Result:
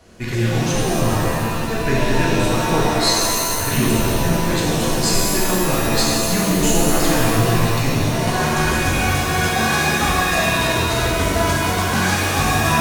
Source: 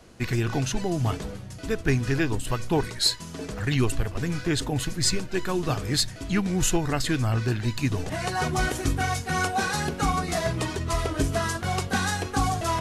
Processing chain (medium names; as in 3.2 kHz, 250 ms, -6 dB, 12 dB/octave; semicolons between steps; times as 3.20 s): pitch-shifted reverb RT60 2.2 s, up +7 st, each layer -2 dB, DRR -5 dB